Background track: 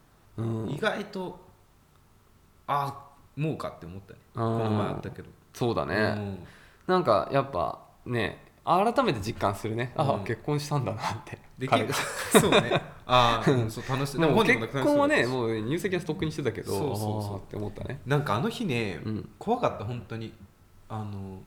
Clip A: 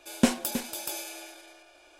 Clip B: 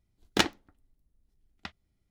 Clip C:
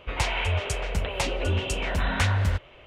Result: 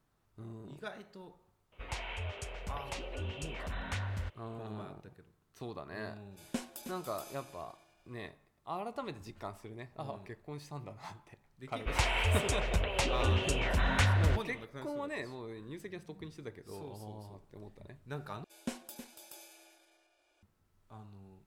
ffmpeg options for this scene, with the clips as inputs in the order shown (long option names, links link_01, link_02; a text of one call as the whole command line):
ffmpeg -i bed.wav -i cue0.wav -i cue1.wav -i cue2.wav -filter_complex "[3:a]asplit=2[link_01][link_02];[1:a]asplit=2[link_03][link_04];[0:a]volume=-16.5dB,asplit=2[link_05][link_06];[link_05]atrim=end=18.444[link_07];[link_04]atrim=end=1.99,asetpts=PTS-STARTPTS,volume=-17dB[link_08];[link_06]atrim=start=20.426[link_09];[link_01]atrim=end=2.86,asetpts=PTS-STARTPTS,volume=-14dB,afade=type=in:duration=0.004:curve=hsin,afade=type=out:start_time=2.856:duration=0.004:curve=hsin,adelay=1720[link_10];[link_03]atrim=end=1.99,asetpts=PTS-STARTPTS,volume=-15.5dB,afade=type=in:duration=0.004:curve=hsin,afade=type=out:start_time=1.986:duration=0.004:curve=hsin,adelay=6310[link_11];[link_02]atrim=end=2.86,asetpts=PTS-STARTPTS,volume=-4dB,afade=type=in:duration=0.004:curve=hsin,afade=type=out:start_time=2.856:duration=0.004:curve=hsin,adelay=11790[link_12];[link_07][link_08]acrossfade=duration=0.004:curve1=hsin:curve2=hsin[link_13];[link_13][link_09]acrossfade=duration=0.004:curve1=hsin:curve2=hsin[link_14];[link_14][link_10][link_11][link_12]amix=inputs=4:normalize=0" out.wav